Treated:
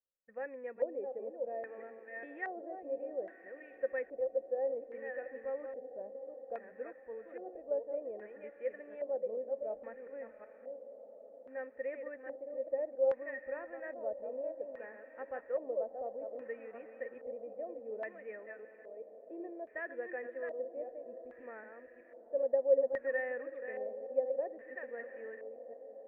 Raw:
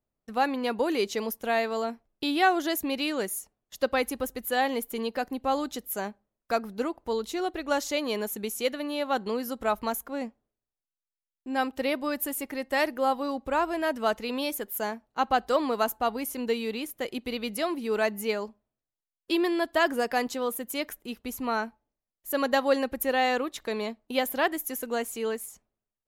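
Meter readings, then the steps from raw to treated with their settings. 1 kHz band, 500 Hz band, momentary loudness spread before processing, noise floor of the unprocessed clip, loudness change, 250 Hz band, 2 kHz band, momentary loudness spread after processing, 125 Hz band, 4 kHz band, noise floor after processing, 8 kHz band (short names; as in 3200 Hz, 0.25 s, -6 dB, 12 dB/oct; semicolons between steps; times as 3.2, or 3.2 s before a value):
-21.0 dB, -6.5 dB, 8 LU, under -85 dBFS, -10.5 dB, -22.0 dB, -14.0 dB, 14 LU, n/a, under -40 dB, -57 dBFS, under -40 dB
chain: reverse delay 0.373 s, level -6 dB; vocal tract filter e; diffused feedback echo 0.745 s, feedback 66%, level -14 dB; LFO low-pass square 0.61 Hz 670–1700 Hz; gain -7.5 dB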